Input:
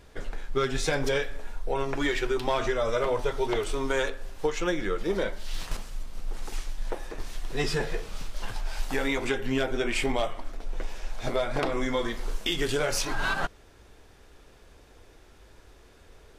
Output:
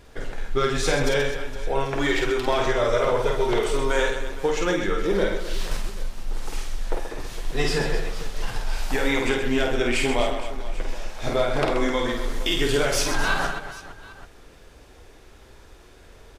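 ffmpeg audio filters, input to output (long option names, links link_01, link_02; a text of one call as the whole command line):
ffmpeg -i in.wav -af "aecho=1:1:50|130|258|462.8|790.5:0.631|0.398|0.251|0.158|0.1,volume=3dB" out.wav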